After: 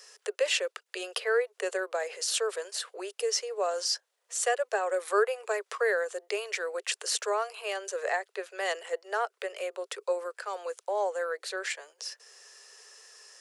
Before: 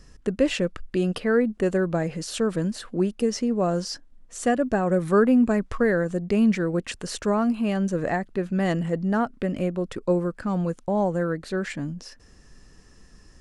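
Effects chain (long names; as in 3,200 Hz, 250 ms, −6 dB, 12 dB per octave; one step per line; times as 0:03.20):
Butterworth high-pass 400 Hz 96 dB per octave
high-shelf EQ 2,000 Hz +10.5 dB
in parallel at −2 dB: downward compressor, threshold −46 dBFS, peak gain reduction 27.5 dB
on the sum: level −5.5 dB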